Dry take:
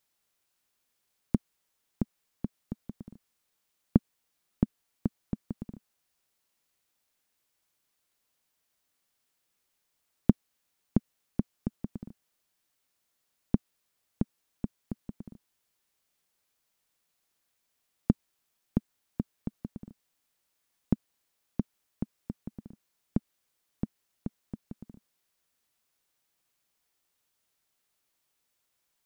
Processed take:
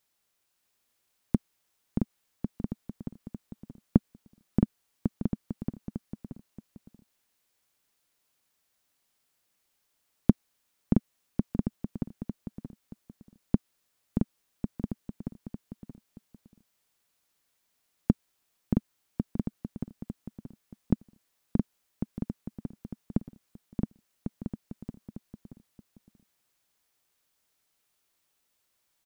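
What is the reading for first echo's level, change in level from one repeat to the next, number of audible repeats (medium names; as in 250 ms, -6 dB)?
-4.5 dB, -10.5 dB, 2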